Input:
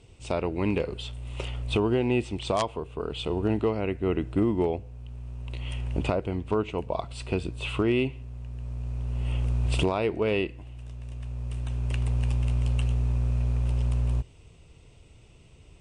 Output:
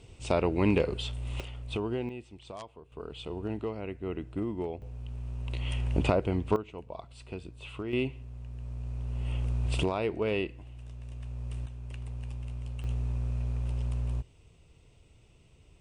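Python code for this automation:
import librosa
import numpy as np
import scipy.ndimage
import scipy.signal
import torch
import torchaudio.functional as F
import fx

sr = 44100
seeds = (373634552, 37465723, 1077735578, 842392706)

y = fx.gain(x, sr, db=fx.steps((0.0, 1.5), (1.4, -8.0), (2.09, -17.0), (2.92, -9.0), (4.82, 1.0), (6.56, -12.0), (7.93, -4.0), (11.66, -12.5), (12.84, -6.0)))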